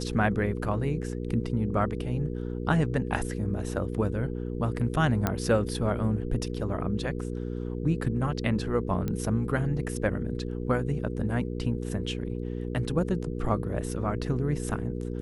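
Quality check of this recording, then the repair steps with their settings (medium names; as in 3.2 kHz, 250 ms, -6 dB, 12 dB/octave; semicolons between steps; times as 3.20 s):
hum 60 Hz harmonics 8 -33 dBFS
5.27 s: pop -11 dBFS
9.08 s: pop -18 dBFS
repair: de-click; de-hum 60 Hz, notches 8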